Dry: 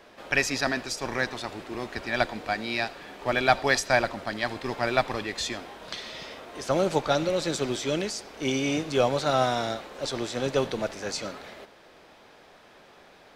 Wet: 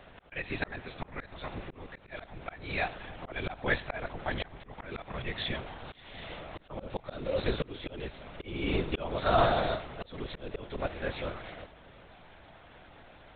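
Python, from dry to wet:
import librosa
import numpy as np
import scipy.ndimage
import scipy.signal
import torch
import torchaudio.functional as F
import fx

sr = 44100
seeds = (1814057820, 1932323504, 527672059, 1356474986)

y = fx.lpc_vocoder(x, sr, seeds[0], excitation='whisper', order=10)
y = fx.auto_swell(y, sr, attack_ms=403.0)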